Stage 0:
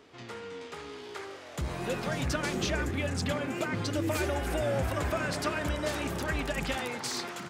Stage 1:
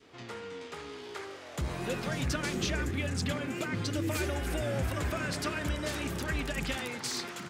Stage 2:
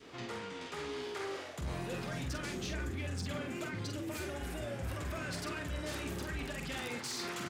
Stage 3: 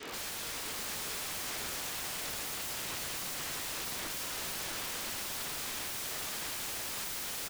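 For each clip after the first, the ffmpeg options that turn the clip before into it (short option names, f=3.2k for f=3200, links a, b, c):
-af "adynamicequalizer=threshold=0.00562:dfrequency=750:dqfactor=0.88:tfrequency=750:tqfactor=0.88:attack=5:release=100:ratio=0.375:range=3:mode=cutabove:tftype=bell"
-filter_complex "[0:a]areverse,acompressor=threshold=-41dB:ratio=5,areverse,asoftclip=type=tanh:threshold=-36.5dB,asplit=2[a][b];[b]adelay=46,volume=-5.5dB[c];[a][c]amix=inputs=2:normalize=0,volume=4dB"
-filter_complex "[0:a]asplit=2[a][b];[b]highpass=f=720:p=1,volume=14dB,asoftclip=type=tanh:threshold=-29.5dB[c];[a][c]amix=inputs=2:normalize=0,lowpass=f=4.9k:p=1,volume=-6dB,aeval=exprs='(mod(106*val(0)+1,2)-1)/106':c=same,aecho=1:1:647:0.631,volume=5.5dB"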